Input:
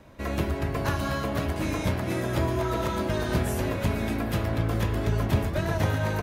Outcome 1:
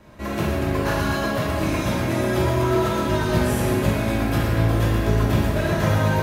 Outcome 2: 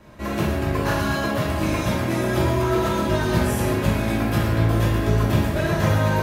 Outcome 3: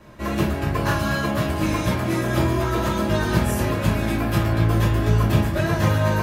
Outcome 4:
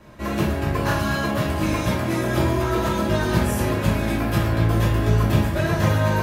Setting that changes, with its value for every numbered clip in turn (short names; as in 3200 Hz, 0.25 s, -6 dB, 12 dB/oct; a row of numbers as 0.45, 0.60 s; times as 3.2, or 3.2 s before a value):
non-linear reverb, gate: 430, 250, 90, 140 ms